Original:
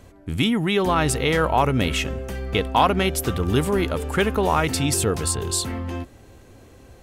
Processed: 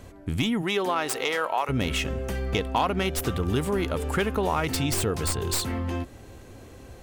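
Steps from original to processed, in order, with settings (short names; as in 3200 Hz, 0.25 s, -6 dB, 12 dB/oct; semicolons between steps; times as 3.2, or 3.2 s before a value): tracing distortion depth 0.074 ms; 0.61–1.68 HPF 240 Hz -> 720 Hz 12 dB/oct; compressor 2:1, threshold -29 dBFS, peak gain reduction 9.5 dB; gain +2 dB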